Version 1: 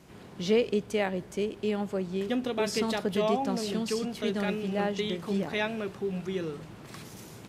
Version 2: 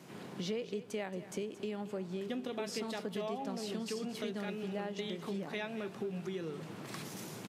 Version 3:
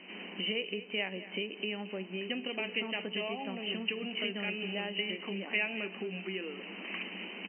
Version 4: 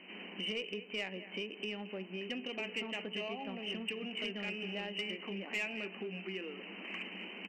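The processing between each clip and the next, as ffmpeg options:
-af "highpass=f=130:w=0.5412,highpass=f=130:w=1.3066,acompressor=threshold=0.0112:ratio=4,aecho=1:1:225:0.188,volume=1.19"
-af "afftfilt=real='re*between(b*sr/4096,180,3100)':imag='im*between(b*sr/4096,180,3100)':win_size=4096:overlap=0.75,bandreject=f=432.2:t=h:w=4,bandreject=f=864.4:t=h:w=4,bandreject=f=1296.6:t=h:w=4,bandreject=f=1728.8:t=h:w=4,bandreject=f=2161:t=h:w=4,bandreject=f=2593.2:t=h:w=4,aexciter=amount=9.2:drive=3:freq=2100"
-af "asoftclip=type=tanh:threshold=0.0562,volume=0.708"

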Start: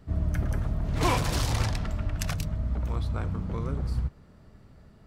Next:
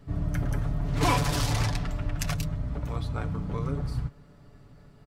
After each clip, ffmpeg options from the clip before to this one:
-af "aecho=1:1:7:0.57"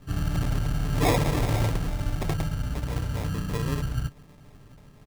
-af "acrusher=samples=30:mix=1:aa=0.000001,volume=1.26"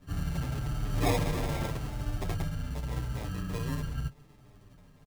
-filter_complex "[0:a]asplit=2[s0][s1];[s1]adelay=8.1,afreqshift=-0.83[s2];[s0][s2]amix=inputs=2:normalize=1,volume=0.75"

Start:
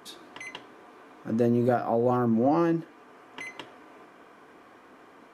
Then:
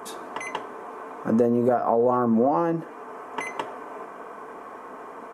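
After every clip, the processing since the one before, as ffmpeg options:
-af "equalizer=f=500:t=o:w=1:g=6,equalizer=f=1000:t=o:w=1:g=9,equalizer=f=4000:t=o:w=1:g=-9,equalizer=f=8000:t=o:w=1:g=4,acompressor=threshold=0.0562:ratio=4,aecho=1:1:4.6:0.31,volume=2"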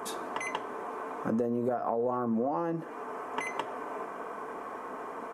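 -af "acompressor=threshold=0.0282:ratio=2.5"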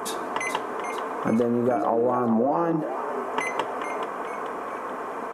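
-filter_complex "[0:a]asplit=6[s0][s1][s2][s3][s4][s5];[s1]adelay=433,afreqshift=81,volume=0.355[s6];[s2]adelay=866,afreqshift=162,volume=0.17[s7];[s3]adelay=1299,afreqshift=243,volume=0.0813[s8];[s4]adelay=1732,afreqshift=324,volume=0.0394[s9];[s5]adelay=2165,afreqshift=405,volume=0.0188[s10];[s0][s6][s7][s8][s9][s10]amix=inputs=6:normalize=0,volume=2.24"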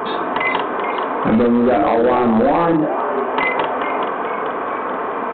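-filter_complex "[0:a]asplit=2[s0][s1];[s1]adelay=46,volume=0.531[s2];[s0][s2]amix=inputs=2:normalize=0,aresample=8000,asoftclip=type=hard:threshold=0.112,aresample=44100,volume=2.82"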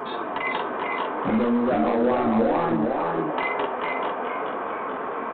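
-filter_complex "[0:a]flanger=delay=7.1:depth=9.1:regen=-35:speed=0.45:shape=triangular,asplit=2[s0][s1];[s1]aecho=0:1:68|454:0.119|0.631[s2];[s0][s2]amix=inputs=2:normalize=0,volume=0.562"

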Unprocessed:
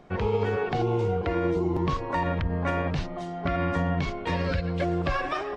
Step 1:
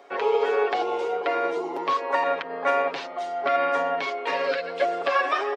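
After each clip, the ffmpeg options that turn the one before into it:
-filter_complex "[0:a]highpass=f=400:w=0.5412,highpass=f=400:w=1.3066,acrossover=split=5200[s0][s1];[s1]acompressor=threshold=0.00126:ratio=4:attack=1:release=60[s2];[s0][s2]amix=inputs=2:normalize=0,aecho=1:1:7.2:0.63,volume=1.58"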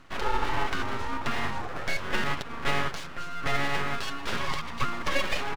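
-af "aeval=exprs='abs(val(0))':c=same,volume=0.841"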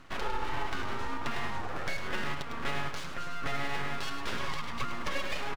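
-filter_complex "[0:a]acompressor=threshold=0.0282:ratio=2.5,asplit=2[s0][s1];[s1]aecho=0:1:104:0.376[s2];[s0][s2]amix=inputs=2:normalize=0"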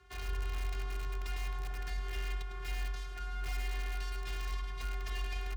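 -filter_complex "[0:a]afftfilt=real='hypot(re,im)*cos(PI*b)':imag='0':win_size=512:overlap=0.75,acrossover=split=250|1500[s0][s1][s2];[s1]aeval=exprs='(mod(66.8*val(0)+1,2)-1)/66.8':c=same[s3];[s0][s3][s2]amix=inputs=3:normalize=0,afreqshift=46,volume=0.562"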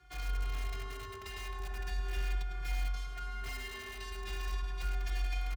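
-filter_complex "[0:a]asplit=2[s0][s1];[s1]adelay=3.7,afreqshift=-0.38[s2];[s0][s2]amix=inputs=2:normalize=1,volume=1.5"

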